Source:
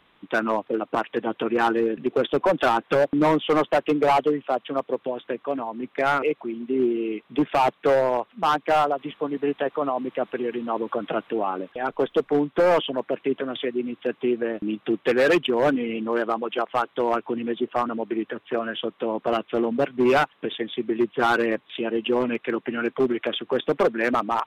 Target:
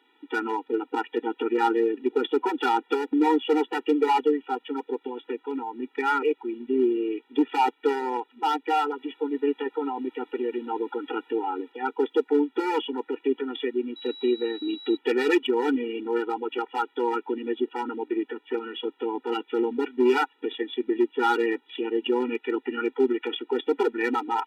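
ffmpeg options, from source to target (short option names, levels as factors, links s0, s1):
-filter_complex "[0:a]asettb=1/sr,asplit=3[s0][s1][s2];[s0]atrim=end=13.964[s3];[s1]atrim=start=13.96:end=14.97,asetpts=PTS-STARTPTS,afade=t=in:d=0.004:c=qsin,afade=t=out:st=1.006:d=0.004:c=qsin,aeval=exprs='val(0)+0.01*sin(2*PI*3900*n/s)':c=same[s4];[s2]atrim=start=14.966[s5];[s3][s4]acrossfade=d=0.004:c1=hsin:c2=qsin[s6];[s6][s5]acrossfade=d=0.004:c1=qsin:c2=hsin,afftfilt=real='re*eq(mod(floor(b*sr/1024/250),2),1)':imag='im*eq(mod(floor(b*sr/1024/250),2),1)':win_size=1024:overlap=0.75"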